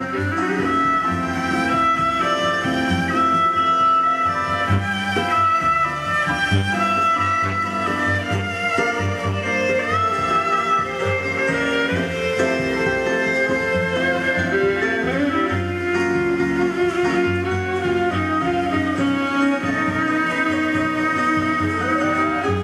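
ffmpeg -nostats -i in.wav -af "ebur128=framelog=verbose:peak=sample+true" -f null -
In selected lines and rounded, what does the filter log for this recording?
Integrated loudness:
  I:         -19.2 LUFS
  Threshold: -29.2 LUFS
Loudness range:
  LRA:         2.2 LU
  Threshold: -39.2 LUFS
  LRA low:   -20.0 LUFS
  LRA high:  -17.8 LUFS
Sample peak:
  Peak:       -6.1 dBFS
True peak:
  Peak:       -6.1 dBFS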